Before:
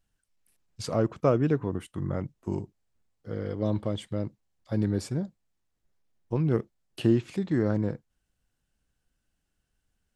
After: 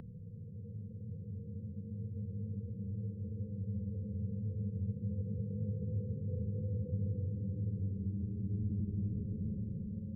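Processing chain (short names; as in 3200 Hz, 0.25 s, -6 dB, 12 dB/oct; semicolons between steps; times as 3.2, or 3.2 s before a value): per-bin expansion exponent 1.5; auto swell 0.291 s; Chebyshev low-pass 530 Hz, order 8; resonant low shelf 240 Hz +9 dB, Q 3; Paulstretch 30×, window 0.10 s, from 3.3; three-band squash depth 40%; gain -3.5 dB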